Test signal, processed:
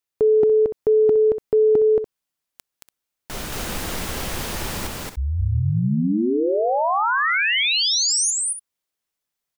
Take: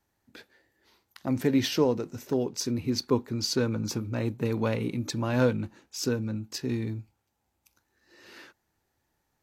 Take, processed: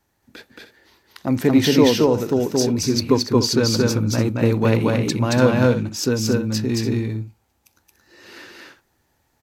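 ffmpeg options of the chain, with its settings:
ffmpeg -i in.wav -af "aecho=1:1:224.5|288.6:0.891|0.282,volume=7.5dB" out.wav

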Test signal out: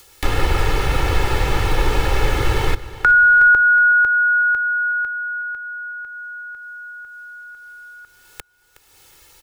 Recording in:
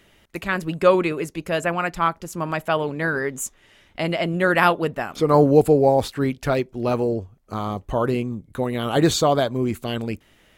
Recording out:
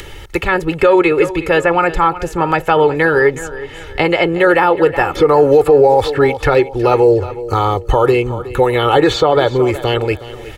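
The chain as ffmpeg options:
ffmpeg -i in.wav -filter_complex "[0:a]acrossover=split=410|900|3400[link_01][link_02][link_03][link_04];[link_01]acompressor=threshold=-35dB:ratio=4[link_05];[link_02]acompressor=threshold=-20dB:ratio=4[link_06];[link_03]acompressor=threshold=-29dB:ratio=4[link_07];[link_04]acompressor=threshold=-53dB:ratio=4[link_08];[link_05][link_06][link_07][link_08]amix=inputs=4:normalize=0,lowshelf=frequency=110:gain=7.5,acompressor=mode=upward:threshold=-40dB:ratio=2.5,highshelf=frequency=9800:gain=-4,aecho=1:1:2.3:0.74,aecho=1:1:367|734|1101:0.158|0.0602|0.0229,alimiter=level_in=14dB:limit=-1dB:release=50:level=0:latency=1,volume=-1dB" out.wav

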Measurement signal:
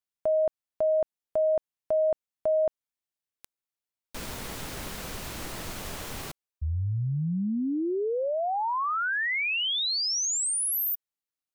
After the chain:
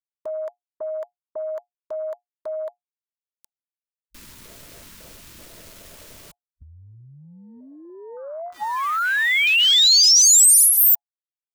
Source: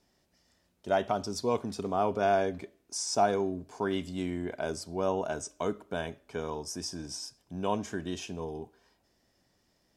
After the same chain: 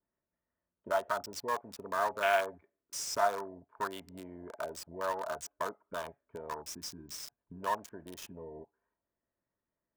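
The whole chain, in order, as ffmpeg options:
ffmpeg -i in.wav -filter_complex "[0:a]afwtdn=0.0224,tiltshelf=frequency=1100:gain=-7.5,acrossover=split=640|1500[link_01][link_02][link_03];[link_01]acompressor=threshold=-50dB:ratio=6:attack=11:release=641:knee=1:detection=peak[link_04];[link_03]acrusher=bits=7:mix=0:aa=0.000001[link_05];[link_04][link_02][link_05]amix=inputs=3:normalize=0,asuperstop=centerf=770:order=20:qfactor=6.5,adynamicequalizer=threshold=0.0158:dfrequency=3200:dqfactor=0.7:tfrequency=3200:tqfactor=0.7:attack=5:release=100:ratio=0.375:range=2.5:mode=boostabove:tftype=highshelf,volume=4.5dB" out.wav

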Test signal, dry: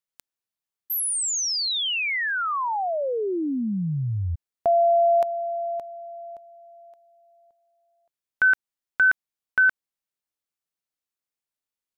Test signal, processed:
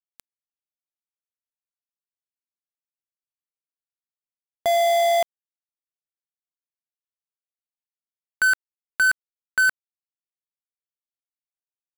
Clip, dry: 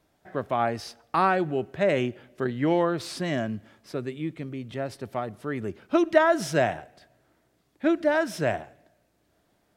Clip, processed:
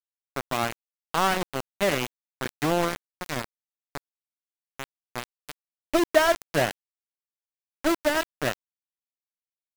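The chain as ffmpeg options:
ffmpeg -i in.wav -filter_complex "[0:a]asplit=4[link_01][link_02][link_03][link_04];[link_02]adelay=98,afreqshift=70,volume=-20dB[link_05];[link_03]adelay=196,afreqshift=140,volume=-28.6dB[link_06];[link_04]adelay=294,afreqshift=210,volume=-37.3dB[link_07];[link_01][link_05][link_06][link_07]amix=inputs=4:normalize=0,aeval=exprs='val(0)*gte(abs(val(0)),0.0944)':channel_layout=same" out.wav

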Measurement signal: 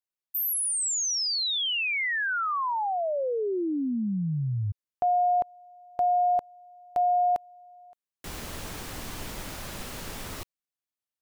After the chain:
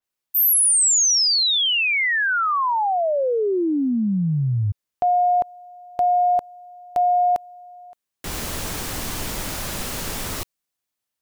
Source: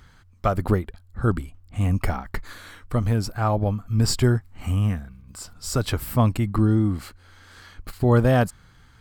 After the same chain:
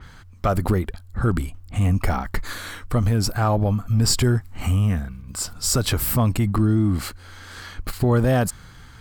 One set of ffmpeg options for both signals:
ffmpeg -i in.wav -af "acompressor=threshold=-25dB:ratio=2.5:attack=0.15:release=46:knee=6:detection=rms,adynamicequalizer=threshold=0.00501:dfrequency=4500:dqfactor=0.7:tfrequency=4500:tqfactor=0.7:attack=5:release=100:ratio=0.375:range=2:mode=boostabove:tftype=highshelf,volume=8.5dB" out.wav

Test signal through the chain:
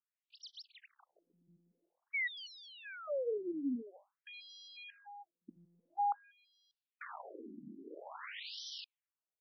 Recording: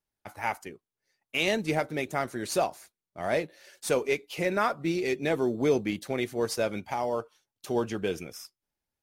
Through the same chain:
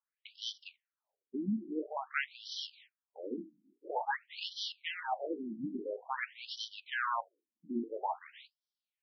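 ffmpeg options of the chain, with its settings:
ffmpeg -i in.wav -af "bandreject=frequency=50:width_type=h:width=6,bandreject=frequency=100:width_type=h:width=6,bandreject=frequency=150:width_type=h:width=6,bandreject=frequency=200:width_type=h:width=6,bandreject=frequency=250:width_type=h:width=6,aeval=exprs='abs(val(0))':channel_layout=same,afftfilt=real='re*between(b*sr/1024,240*pow(4300/240,0.5+0.5*sin(2*PI*0.49*pts/sr))/1.41,240*pow(4300/240,0.5+0.5*sin(2*PI*0.49*pts/sr))*1.41)':imag='im*between(b*sr/1024,240*pow(4300/240,0.5+0.5*sin(2*PI*0.49*pts/sr))/1.41,240*pow(4300/240,0.5+0.5*sin(2*PI*0.49*pts/sr))*1.41)':win_size=1024:overlap=0.75,volume=3.5dB" out.wav

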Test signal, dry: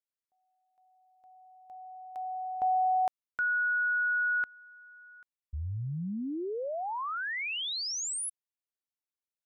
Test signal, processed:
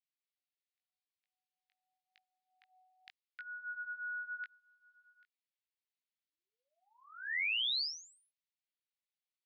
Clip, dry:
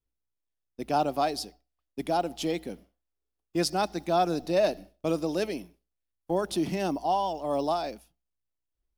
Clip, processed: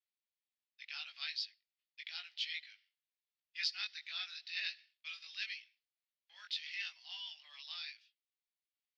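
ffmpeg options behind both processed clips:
ffmpeg -i in.wav -af "flanger=delay=18:depth=2.6:speed=0.85,asuperpass=centerf=3000:order=8:qfactor=1,volume=3.5dB" out.wav

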